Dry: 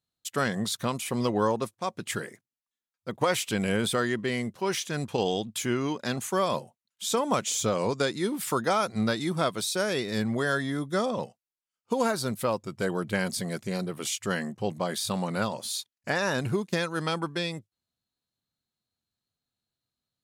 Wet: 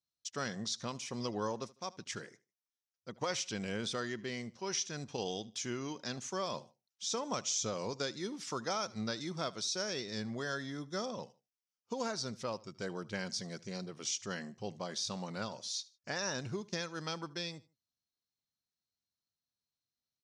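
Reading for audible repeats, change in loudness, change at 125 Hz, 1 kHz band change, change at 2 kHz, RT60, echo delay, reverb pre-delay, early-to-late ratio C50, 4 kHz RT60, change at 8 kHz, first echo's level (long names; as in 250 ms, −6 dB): 2, −9.5 dB, −11.5 dB, −11.5 dB, −11.0 dB, no reverb audible, 76 ms, no reverb audible, no reverb audible, no reverb audible, −5.5 dB, −21.5 dB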